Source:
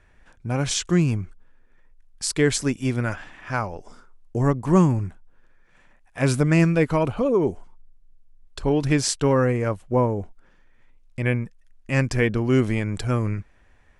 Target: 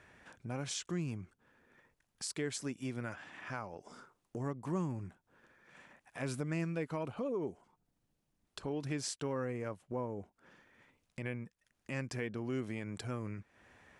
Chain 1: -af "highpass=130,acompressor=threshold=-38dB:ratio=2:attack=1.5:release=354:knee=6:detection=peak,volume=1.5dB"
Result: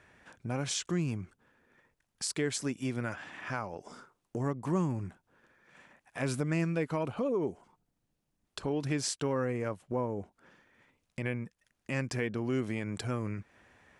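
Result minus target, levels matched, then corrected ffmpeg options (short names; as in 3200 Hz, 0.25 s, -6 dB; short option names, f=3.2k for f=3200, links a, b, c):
compressor: peak gain reduction -5.5 dB
-af "highpass=130,acompressor=threshold=-49.5dB:ratio=2:attack=1.5:release=354:knee=6:detection=peak,volume=1.5dB"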